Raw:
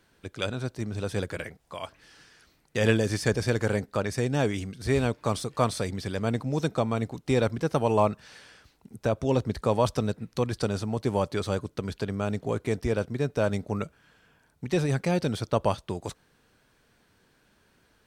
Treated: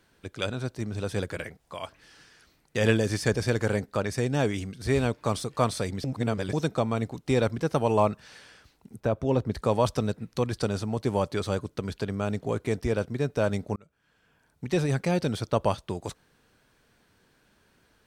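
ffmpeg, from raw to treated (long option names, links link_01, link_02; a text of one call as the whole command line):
ffmpeg -i in.wav -filter_complex "[0:a]asettb=1/sr,asplit=3[link_01][link_02][link_03];[link_01]atrim=end=9.004[link_04];[link_02]atrim=start=9:end=9.52,asetpts=PTS-STARTPTS,afade=type=in:duration=0.004:curve=qsin,afade=type=out:start_time=0.516:duration=0.004:curve=qsin,equalizer=frequency=8000:width=0.36:gain=-9[link_05];[link_03]atrim=start=9.516[link_06];[link_04][link_05]acrossfade=duration=0.004:curve1=hsin:curve2=qsin[link_07];[link_07][link_06]acrossfade=duration=0.004:curve1=qsin:curve2=hsin,asplit=4[link_08][link_09][link_10][link_11];[link_08]atrim=end=6.042[link_12];[link_09]atrim=start=6.038:end=6.532,asetpts=PTS-STARTPTS,areverse[link_13];[link_10]atrim=start=6.528:end=13.76,asetpts=PTS-STARTPTS,afade=type=out:start_time=7.228:duration=0.004:curve=hsin[link_14];[link_11]atrim=start=13.76,asetpts=PTS-STARTPTS,afade=type=in:duration=0.88[link_15];[link_12][link_13]acrossfade=duration=0.004:curve1=hsin:curve2=hsin[link_16];[link_14][link_15]concat=n=2:v=0:a=1[link_17];[link_16][link_17]acrossfade=duration=0.004:curve1=hsin:curve2=hsin" out.wav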